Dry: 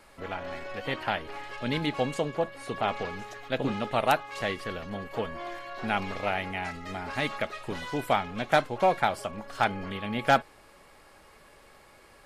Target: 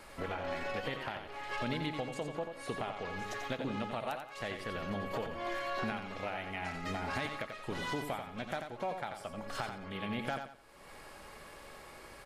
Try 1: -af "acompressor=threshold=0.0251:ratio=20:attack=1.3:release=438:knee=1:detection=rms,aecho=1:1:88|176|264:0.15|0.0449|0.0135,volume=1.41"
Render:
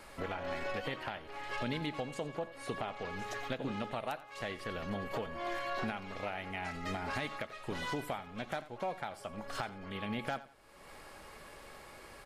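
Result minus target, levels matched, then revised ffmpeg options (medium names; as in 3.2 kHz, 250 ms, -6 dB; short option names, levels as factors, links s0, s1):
echo-to-direct -9.5 dB
-af "acompressor=threshold=0.0251:ratio=20:attack=1.3:release=438:knee=1:detection=rms,aecho=1:1:88|176|264|352:0.447|0.134|0.0402|0.0121,volume=1.41"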